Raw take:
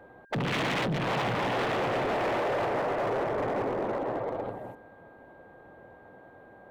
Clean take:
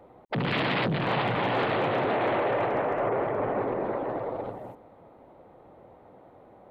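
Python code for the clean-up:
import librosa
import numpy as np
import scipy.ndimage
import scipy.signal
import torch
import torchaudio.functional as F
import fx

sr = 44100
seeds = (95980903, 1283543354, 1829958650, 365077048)

y = fx.fix_declip(x, sr, threshold_db=-25.5)
y = fx.notch(y, sr, hz=1600.0, q=30.0)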